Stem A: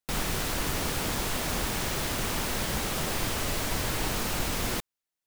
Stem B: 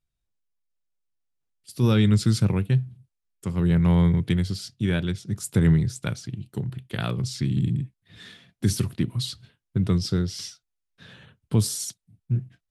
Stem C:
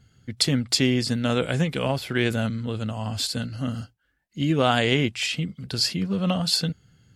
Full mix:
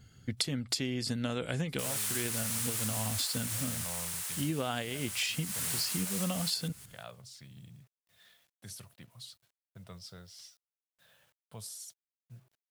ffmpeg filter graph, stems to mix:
ffmpeg -i stem1.wav -i stem2.wav -i stem3.wav -filter_complex "[0:a]highpass=1200,equalizer=frequency=9200:width_type=o:width=0.97:gain=10.5,adelay=1700,volume=2dB,afade=type=out:start_time=3.27:duration=0.52:silence=0.421697,afade=type=in:start_time=5.41:duration=0.39:silence=0.421697,asplit=2[link_01][link_02];[link_02]volume=-8dB[link_03];[1:a]lowshelf=frequency=450:width_type=q:width=3:gain=-9.5,acrusher=bits=8:mix=0:aa=0.000001,volume=-17.5dB,asplit=2[link_04][link_05];[2:a]volume=0dB[link_06];[link_05]apad=whole_len=315575[link_07];[link_06][link_07]sidechaincompress=threshold=-54dB:ratio=8:attack=27:release=164[link_08];[link_03]aecho=0:1:177|354|531|708:1|0.25|0.0625|0.0156[link_09];[link_01][link_04][link_08][link_09]amix=inputs=4:normalize=0,highshelf=frequency=9000:gain=7.5,acompressor=threshold=-29dB:ratio=16" out.wav

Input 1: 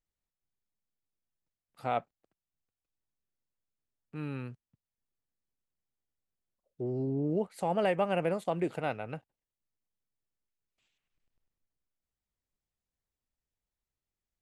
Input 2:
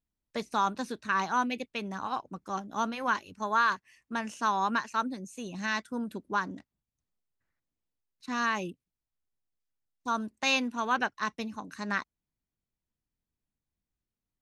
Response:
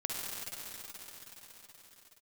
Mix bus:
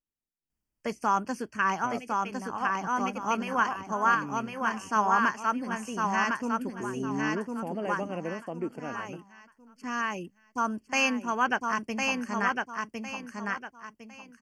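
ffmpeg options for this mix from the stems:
-filter_complex "[0:a]equalizer=frequency=270:width_type=o:width=1.2:gain=11,volume=-9dB,asplit=2[link_01][link_02];[1:a]adelay=500,volume=2dB,asplit=2[link_03][link_04];[link_04]volume=-3.5dB[link_05];[link_02]apad=whole_len=657623[link_06];[link_03][link_06]sidechaincompress=threshold=-43dB:ratio=8:attack=7.3:release=720[link_07];[link_05]aecho=0:1:1056|2112|3168|4224:1|0.3|0.09|0.027[link_08];[link_01][link_07][link_08]amix=inputs=3:normalize=0,asuperstop=centerf=3800:order=12:qfactor=3.3"

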